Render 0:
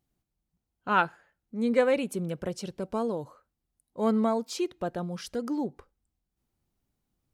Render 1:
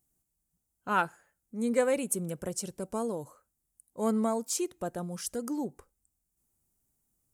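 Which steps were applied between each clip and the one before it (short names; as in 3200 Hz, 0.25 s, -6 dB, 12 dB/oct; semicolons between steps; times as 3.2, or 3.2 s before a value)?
resonant high shelf 5700 Hz +13 dB, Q 1.5; gain -3 dB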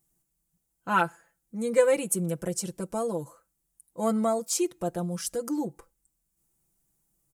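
comb 6 ms, depth 75%; gain +1.5 dB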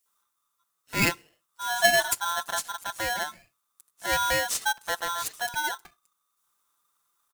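bands offset in time highs, lows 60 ms, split 3500 Hz; polarity switched at an audio rate 1200 Hz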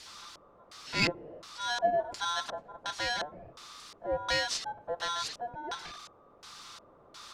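zero-crossing step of -34 dBFS; LFO low-pass square 1.4 Hz 560–4700 Hz; gain -6.5 dB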